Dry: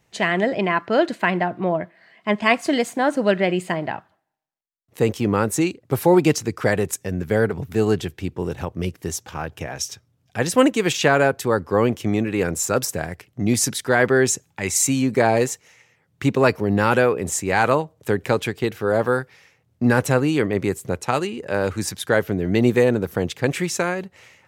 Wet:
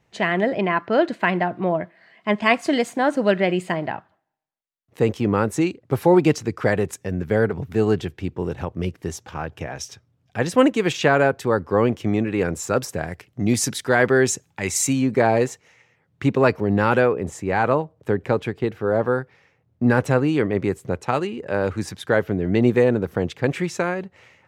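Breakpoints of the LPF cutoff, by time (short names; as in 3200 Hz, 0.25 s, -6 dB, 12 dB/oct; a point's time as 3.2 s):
LPF 6 dB/oct
3000 Hz
from 1.22 s 6400 Hz
from 3.89 s 3100 Hz
from 13.07 s 7100 Hz
from 14.93 s 2700 Hz
from 17.08 s 1300 Hz
from 19.88 s 2400 Hz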